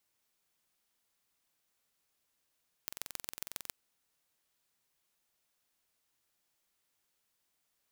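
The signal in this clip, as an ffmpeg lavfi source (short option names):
-f lavfi -i "aevalsrc='0.335*eq(mod(n,2005),0)*(0.5+0.5*eq(mod(n,6015),0))':d=0.84:s=44100"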